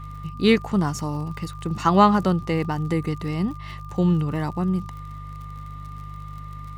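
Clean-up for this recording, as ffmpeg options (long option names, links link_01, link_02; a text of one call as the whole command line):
ffmpeg -i in.wav -af "adeclick=threshold=4,bandreject=frequency=50.2:width_type=h:width=4,bandreject=frequency=100.4:width_type=h:width=4,bandreject=frequency=150.6:width_type=h:width=4,bandreject=frequency=1200:width=30" out.wav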